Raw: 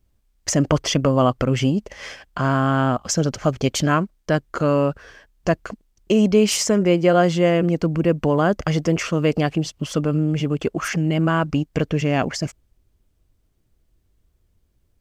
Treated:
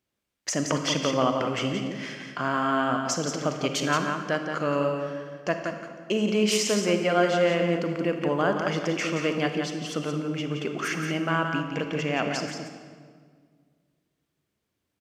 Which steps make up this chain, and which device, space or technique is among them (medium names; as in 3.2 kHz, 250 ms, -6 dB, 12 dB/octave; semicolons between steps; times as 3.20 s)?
PA in a hall (high-pass 190 Hz 12 dB/octave; peaking EQ 2.3 kHz +6 dB 2.4 oct; delay 174 ms -6.5 dB; reverberation RT60 1.8 s, pre-delay 32 ms, DRR 6 dB); trim -8.5 dB